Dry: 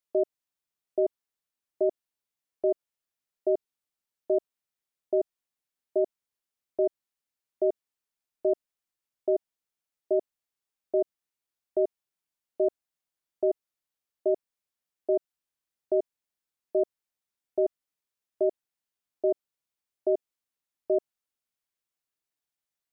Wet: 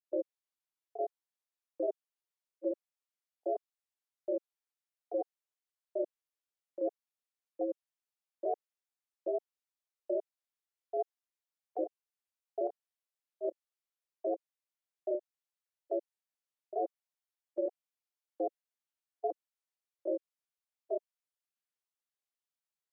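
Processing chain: high-pass 410 Hz 24 dB/octave; granulator 161 ms, grains 18 per s, spray 22 ms, pitch spread up and down by 3 st; trim -4 dB

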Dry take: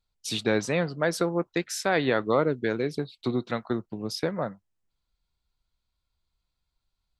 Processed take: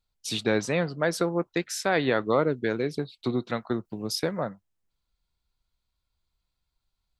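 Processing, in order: 3.85–4.41 s: treble shelf 6.6 kHz +10.5 dB

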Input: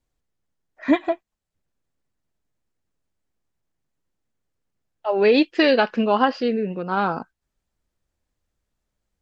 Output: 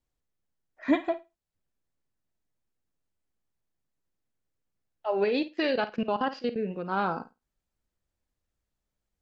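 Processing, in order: 5.24–6.56 s: level held to a coarse grid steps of 20 dB; on a send: flutter echo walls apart 9 m, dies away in 0.23 s; on the sum: trim -6 dB

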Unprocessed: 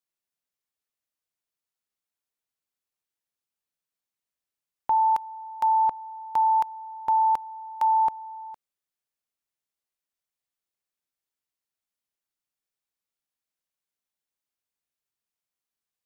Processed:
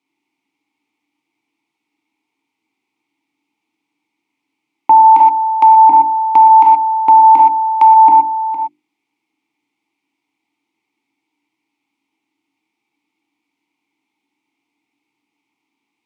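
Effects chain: vowel filter u; peaking EQ 1 kHz -3.5 dB 0.77 oct; in parallel at -1.5 dB: gain riding 0.5 s; on the sum: high-pass 86 Hz; hum notches 50/100/150/200/250/300/350 Hz; gated-style reverb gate 140 ms flat, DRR 1 dB; compression, threshold -29 dBFS, peak gain reduction 7.5 dB; loudness maximiser +31 dB; trim -1 dB

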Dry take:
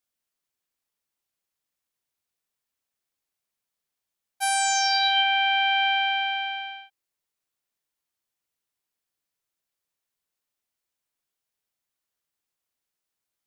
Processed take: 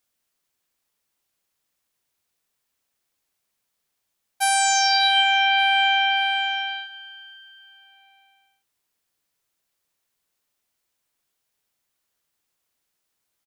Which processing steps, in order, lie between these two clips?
feedback delay 581 ms, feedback 49%, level -23.5 dB; in parallel at +0.5 dB: compression, threshold -32 dBFS, peak gain reduction 13.5 dB; on the sum: trim +1.5 dB

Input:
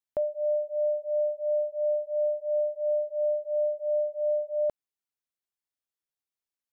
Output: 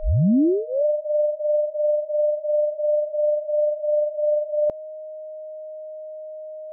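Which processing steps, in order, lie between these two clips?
tape start-up on the opening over 0.84 s; tilt shelf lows +5 dB, about 790 Hz; whistle 620 Hz -37 dBFS; trim +4.5 dB

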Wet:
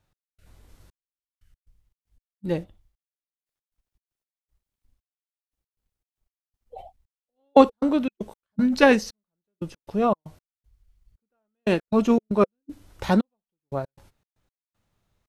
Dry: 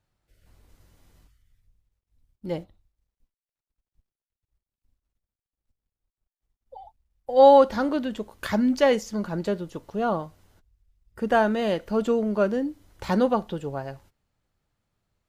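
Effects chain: trance gate "x..xxxx....x.xx." 117 bpm -60 dB; formant shift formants -2 st; trim +4 dB

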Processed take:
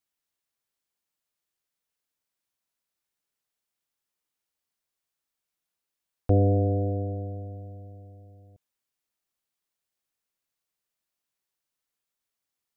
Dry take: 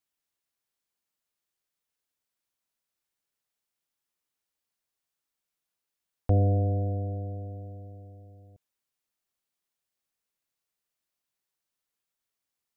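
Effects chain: dynamic bell 370 Hz, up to +8 dB, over -43 dBFS, Q 1.1

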